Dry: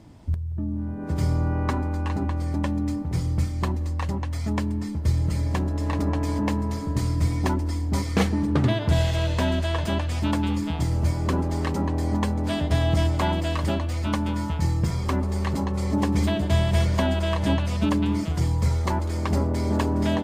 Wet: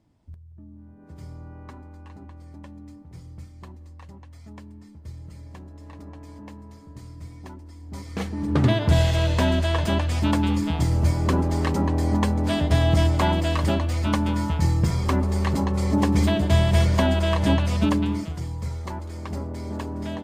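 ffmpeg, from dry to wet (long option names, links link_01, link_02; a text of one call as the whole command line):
ffmpeg -i in.wav -af "volume=2.5dB,afade=type=in:start_time=7.76:duration=0.6:silence=0.298538,afade=type=in:start_time=8.36:duration=0.29:silence=0.354813,afade=type=out:start_time=17.79:duration=0.62:silence=0.298538" out.wav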